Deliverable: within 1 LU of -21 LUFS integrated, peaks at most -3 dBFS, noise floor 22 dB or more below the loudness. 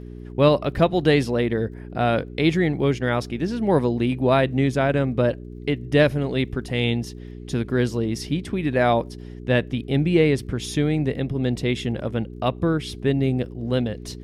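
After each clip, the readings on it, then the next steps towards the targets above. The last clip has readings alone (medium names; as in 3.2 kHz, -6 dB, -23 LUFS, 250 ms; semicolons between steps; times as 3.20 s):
tick rate 35 per s; hum 60 Hz; highest harmonic 420 Hz; hum level -35 dBFS; loudness -22.5 LUFS; peak level -3.5 dBFS; loudness target -21.0 LUFS
-> de-click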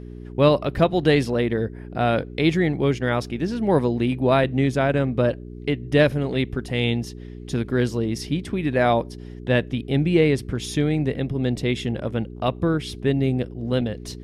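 tick rate 0.070 per s; hum 60 Hz; highest harmonic 420 Hz; hum level -35 dBFS
-> de-hum 60 Hz, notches 7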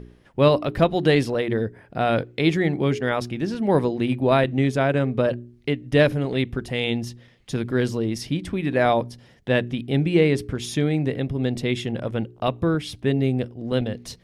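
hum not found; loudness -23.0 LUFS; peak level -3.5 dBFS; loudness target -21.0 LUFS
-> trim +2 dB; peak limiter -3 dBFS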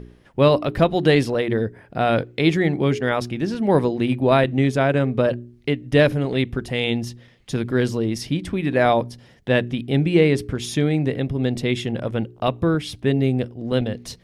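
loudness -21.0 LUFS; peak level -3.0 dBFS; noise floor -52 dBFS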